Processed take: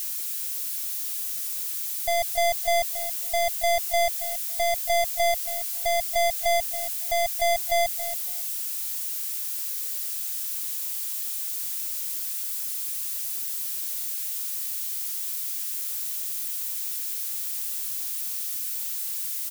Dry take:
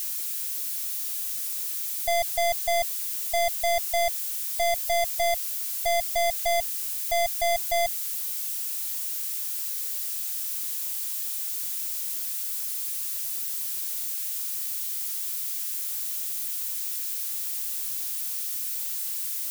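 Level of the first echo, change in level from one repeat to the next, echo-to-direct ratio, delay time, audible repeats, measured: -12.5 dB, -15.5 dB, -12.5 dB, 0.277 s, 2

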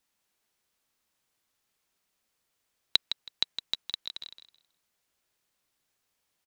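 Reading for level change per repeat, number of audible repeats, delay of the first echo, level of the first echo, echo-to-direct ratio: -13.5 dB, 2, 0.161 s, -9.0 dB, -9.0 dB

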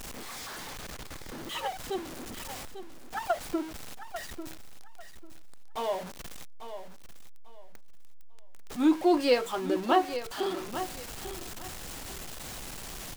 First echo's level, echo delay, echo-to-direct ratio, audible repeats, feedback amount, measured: -11.0 dB, 0.845 s, -11.0 dB, 2, 23%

